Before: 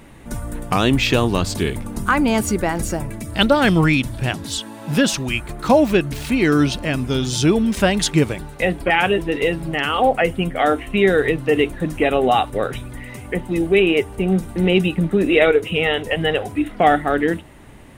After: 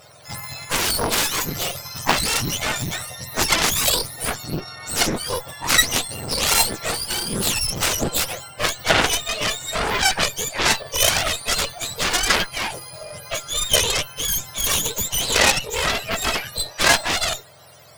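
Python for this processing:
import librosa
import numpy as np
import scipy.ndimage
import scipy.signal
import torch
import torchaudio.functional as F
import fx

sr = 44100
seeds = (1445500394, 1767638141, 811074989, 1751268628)

y = fx.octave_mirror(x, sr, pivot_hz=1100.0)
y = fx.low_shelf_res(y, sr, hz=470.0, db=-8.5, q=1.5)
y = fx.cheby_harmonics(y, sr, harmonics=(6, 7, 8), levels_db=(-14, -10, -9), full_scale_db=-4.5)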